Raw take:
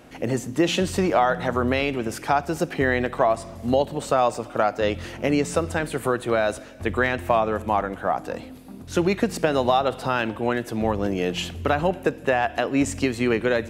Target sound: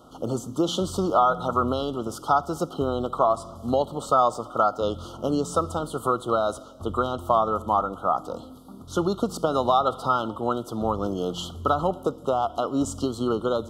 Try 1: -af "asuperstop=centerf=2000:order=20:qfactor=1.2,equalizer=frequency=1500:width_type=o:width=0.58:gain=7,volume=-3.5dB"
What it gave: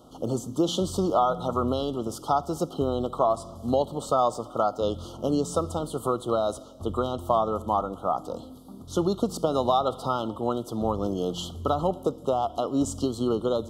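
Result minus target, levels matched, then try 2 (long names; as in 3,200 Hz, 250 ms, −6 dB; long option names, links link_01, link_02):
2,000 Hz band −8.5 dB
-af "asuperstop=centerf=2000:order=20:qfactor=1.2,equalizer=frequency=1500:width_type=o:width=0.58:gain=19,volume=-3.5dB"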